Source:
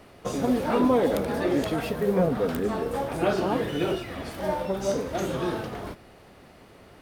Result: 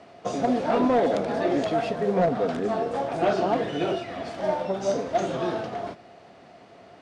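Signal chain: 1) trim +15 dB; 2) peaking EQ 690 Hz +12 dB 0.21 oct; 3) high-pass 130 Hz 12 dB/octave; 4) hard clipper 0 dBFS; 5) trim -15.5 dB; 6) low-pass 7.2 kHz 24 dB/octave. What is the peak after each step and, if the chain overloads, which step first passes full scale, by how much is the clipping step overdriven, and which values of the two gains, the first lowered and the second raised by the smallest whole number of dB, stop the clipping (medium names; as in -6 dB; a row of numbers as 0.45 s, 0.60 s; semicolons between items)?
+4.5 dBFS, +7.0 dBFS, +6.5 dBFS, 0.0 dBFS, -15.5 dBFS, -15.0 dBFS; step 1, 6.5 dB; step 1 +8 dB, step 5 -8.5 dB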